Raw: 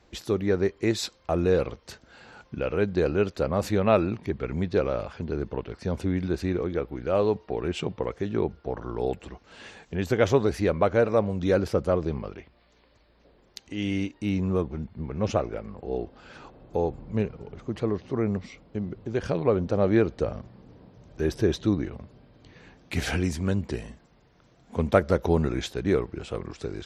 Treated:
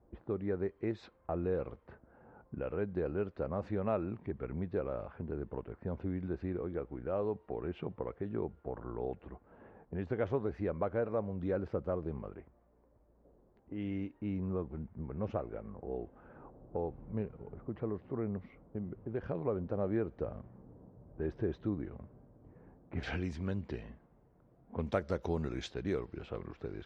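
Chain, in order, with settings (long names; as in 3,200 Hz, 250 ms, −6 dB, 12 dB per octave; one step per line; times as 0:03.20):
low-pass filter 1,600 Hz 12 dB per octave, from 0:23.03 3,600 Hz, from 0:24.87 7,600 Hz
low-pass that shuts in the quiet parts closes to 770 Hz, open at −22 dBFS
downward compressor 1.5 to 1, threshold −37 dBFS, peak gain reduction 8.5 dB
level −5 dB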